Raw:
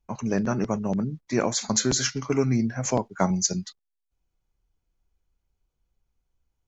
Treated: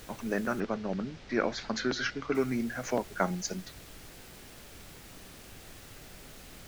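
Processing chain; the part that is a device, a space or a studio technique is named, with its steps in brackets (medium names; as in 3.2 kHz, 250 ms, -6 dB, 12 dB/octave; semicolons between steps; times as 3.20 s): horn gramophone (band-pass 240–4000 Hz; peaking EQ 1.5 kHz +7 dB; wow and flutter; pink noise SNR 14 dB); 0.60–2.35 s: low-pass 5.4 kHz 24 dB/octave; peaking EQ 990 Hz -5.5 dB 0.56 oct; trim -4 dB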